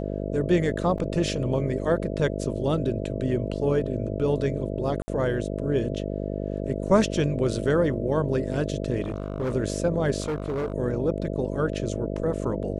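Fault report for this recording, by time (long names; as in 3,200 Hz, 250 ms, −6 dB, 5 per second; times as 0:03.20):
mains buzz 50 Hz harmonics 13 −30 dBFS
0:00.98: drop-out 3.4 ms
0:05.02–0:05.08: drop-out 60 ms
0:09.02–0:09.54: clipping −23.5 dBFS
0:10.20–0:10.74: clipping −24 dBFS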